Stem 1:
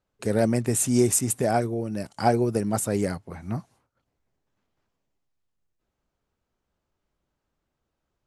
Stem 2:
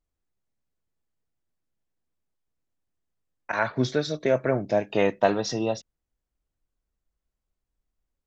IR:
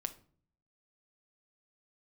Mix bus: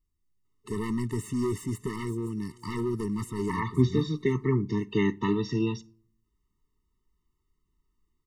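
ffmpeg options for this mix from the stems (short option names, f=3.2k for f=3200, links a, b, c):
-filter_complex "[0:a]asoftclip=type=hard:threshold=-23.5dB,adelay=450,volume=-1.5dB,asplit=2[a][b];[b]volume=-23.5dB[c];[1:a]bass=f=250:g=6,treble=f=4k:g=4,volume=-3dB,asplit=2[d][e];[e]volume=-9dB[f];[2:a]atrim=start_sample=2205[g];[f][g]afir=irnorm=-1:irlink=0[h];[c]aecho=0:1:514|1028|1542|2056|2570:1|0.36|0.13|0.0467|0.0168[i];[a][d][h][i]amix=inputs=4:normalize=0,acrossover=split=3000[j][k];[k]acompressor=threshold=-42dB:ratio=4:attack=1:release=60[l];[j][l]amix=inputs=2:normalize=0,afftfilt=real='re*eq(mod(floor(b*sr/1024/440),2),0)':imag='im*eq(mod(floor(b*sr/1024/440),2),0)':win_size=1024:overlap=0.75"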